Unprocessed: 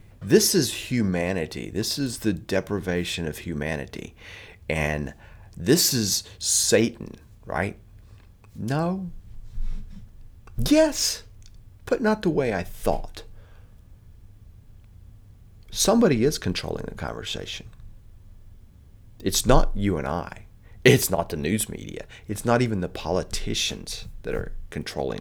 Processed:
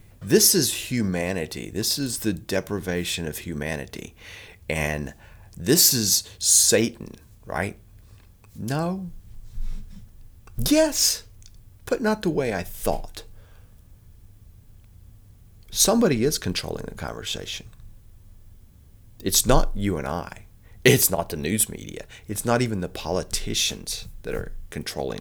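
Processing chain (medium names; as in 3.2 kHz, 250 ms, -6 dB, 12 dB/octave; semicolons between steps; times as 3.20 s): treble shelf 5.8 kHz +10 dB; trim -1 dB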